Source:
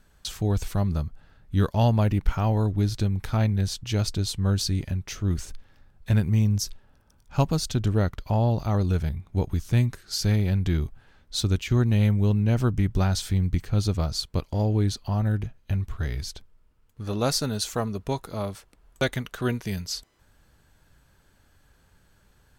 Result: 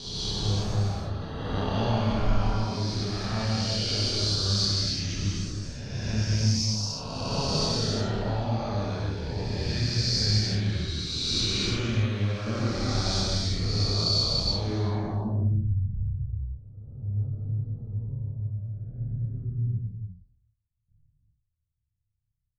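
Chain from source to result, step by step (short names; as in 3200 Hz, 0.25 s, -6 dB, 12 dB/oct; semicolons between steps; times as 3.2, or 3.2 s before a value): spectral swells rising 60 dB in 2.11 s; gate with hold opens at -45 dBFS; low-pass sweep 5000 Hz -> 110 Hz, 14.49–15.44; chorus voices 2, 0.1 Hz, delay 29 ms, depth 2.6 ms; non-linear reverb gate 0.38 s flat, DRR -3.5 dB; gain -8.5 dB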